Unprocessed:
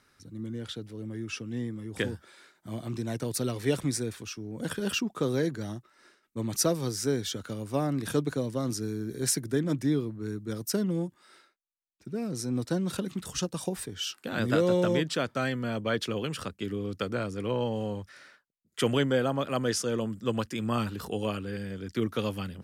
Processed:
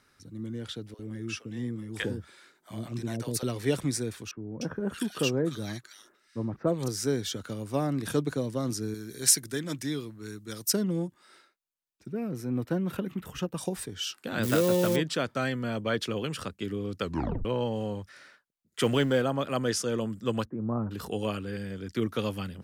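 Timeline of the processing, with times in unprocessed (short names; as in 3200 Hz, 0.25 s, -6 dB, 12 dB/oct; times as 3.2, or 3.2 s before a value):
0.94–3.43 bands offset in time highs, lows 50 ms, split 590 Hz
4.31–6.88 bands offset in time lows, highs 0.3 s, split 1600 Hz
8.94–10.73 tilt shelf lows -7 dB, about 1300 Hz
12.12–13.58 band shelf 6100 Hz -13 dB
14.43–14.96 switching spikes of -22.5 dBFS
17.03 tape stop 0.42 s
18.81–19.22 G.711 law mismatch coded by mu
20.45–20.91 Bessel low-pass 760 Hz, order 6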